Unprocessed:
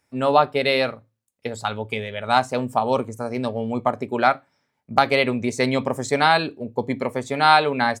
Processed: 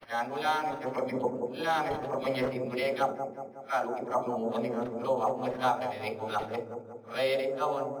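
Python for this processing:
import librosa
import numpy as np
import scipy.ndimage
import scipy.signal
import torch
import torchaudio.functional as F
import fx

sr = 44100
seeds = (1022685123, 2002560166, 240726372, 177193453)

p1 = np.flip(x).copy()
p2 = fx.highpass(p1, sr, hz=400.0, slope=6)
p3 = fx.peak_eq(p2, sr, hz=2700.0, db=-9.5, octaves=2.7)
p4 = fx.rider(p3, sr, range_db=4, speed_s=0.5)
p5 = fx.tilt_shelf(p4, sr, db=-3.5, hz=970.0)
p6 = fx.dispersion(p5, sr, late='lows', ms=64.0, hz=970.0)
p7 = p6 + fx.echo_wet_lowpass(p6, sr, ms=184, feedback_pct=55, hz=680.0, wet_db=-4.0, dry=0)
p8 = fx.room_shoebox(p7, sr, seeds[0], volume_m3=340.0, walls='furnished', distance_m=0.74)
p9 = np.interp(np.arange(len(p8)), np.arange(len(p8))[::6], p8[::6])
y = F.gain(torch.from_numpy(p9), -4.5).numpy()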